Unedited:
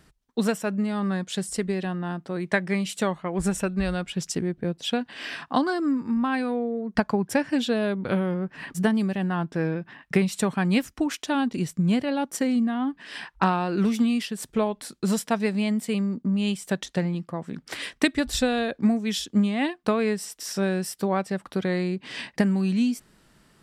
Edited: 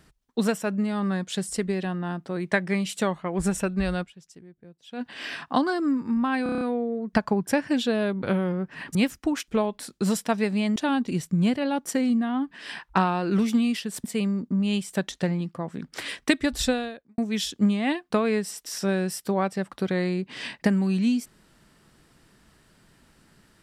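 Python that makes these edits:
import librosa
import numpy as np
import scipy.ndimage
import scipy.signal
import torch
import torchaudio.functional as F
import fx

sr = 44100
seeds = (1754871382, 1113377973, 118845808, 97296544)

y = fx.edit(x, sr, fx.fade_down_up(start_s=4.02, length_s=0.99, db=-21.0, fade_s=0.37, curve='exp'),
    fx.stutter(start_s=6.43, slice_s=0.03, count=7),
    fx.cut(start_s=8.77, length_s=1.92),
    fx.move(start_s=14.5, length_s=1.28, to_s=11.22),
    fx.fade_out_span(start_s=18.43, length_s=0.49, curve='qua'), tone=tone)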